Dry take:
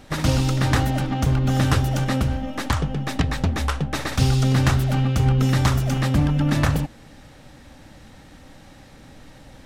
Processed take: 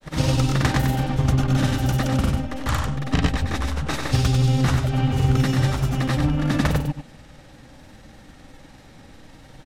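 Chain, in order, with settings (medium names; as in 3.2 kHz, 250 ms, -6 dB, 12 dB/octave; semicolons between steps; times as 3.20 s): granulator, pitch spread up and down by 0 st; delay 95 ms -6 dB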